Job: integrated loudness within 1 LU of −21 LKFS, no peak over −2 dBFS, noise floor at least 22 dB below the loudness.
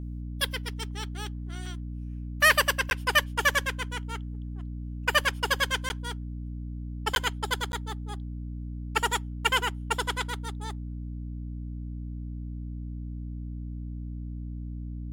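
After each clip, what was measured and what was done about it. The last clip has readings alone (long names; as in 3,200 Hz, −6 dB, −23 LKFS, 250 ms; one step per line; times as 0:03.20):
number of dropouts 4; longest dropout 11 ms; mains hum 60 Hz; hum harmonics up to 300 Hz; level of the hum −33 dBFS; integrated loudness −30.0 LKFS; sample peak −7.0 dBFS; target loudness −21.0 LKFS
→ repair the gap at 0:02.90/0:05.89/0:07.15/0:07.72, 11 ms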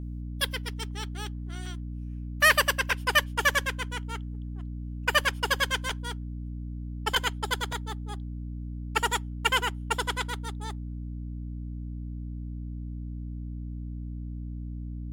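number of dropouts 0; mains hum 60 Hz; hum harmonics up to 300 Hz; level of the hum −33 dBFS
→ mains-hum notches 60/120/180/240/300 Hz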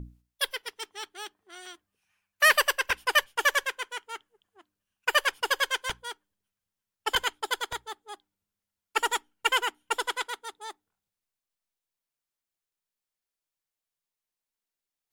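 mains hum none found; integrated loudness −27.5 LKFS; sample peak −7.5 dBFS; target loudness −21.0 LKFS
→ level +6.5 dB
brickwall limiter −2 dBFS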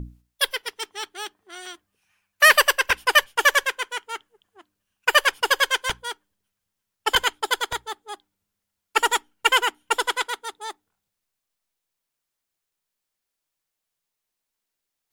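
integrated loudness −21.0 LKFS; sample peak −2.0 dBFS; background noise floor −83 dBFS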